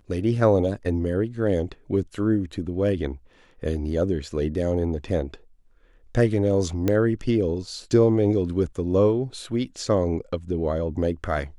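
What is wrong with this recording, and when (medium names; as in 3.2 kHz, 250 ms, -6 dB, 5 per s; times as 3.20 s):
6.88 s: pop -10 dBFS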